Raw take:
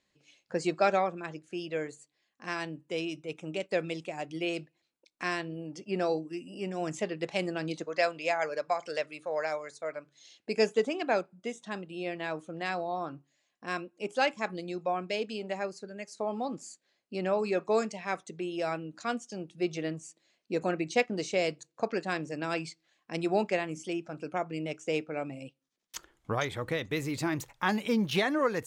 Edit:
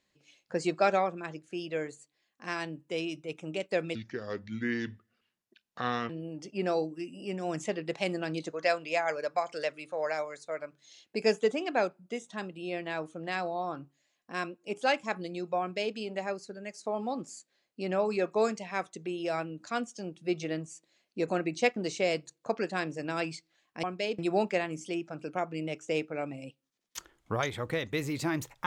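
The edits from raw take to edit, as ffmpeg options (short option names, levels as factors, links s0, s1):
-filter_complex "[0:a]asplit=5[s0][s1][s2][s3][s4];[s0]atrim=end=3.954[s5];[s1]atrim=start=3.95:end=5.43,asetpts=PTS-STARTPTS,asetrate=30429,aresample=44100,atrim=end_sample=94591,asetpts=PTS-STARTPTS[s6];[s2]atrim=start=5.426:end=23.172[s7];[s3]atrim=start=14.938:end=15.292[s8];[s4]atrim=start=23.168[s9];[s5][s6]acrossfade=d=0.004:c1=hsin:c2=hsin[s10];[s10][s7]acrossfade=d=0.004:c1=hsin:c2=hsin[s11];[s11][s8]acrossfade=d=0.004:c1=hsin:c2=hsin[s12];[s12][s9]acrossfade=d=0.004:c1=hsin:c2=hsin"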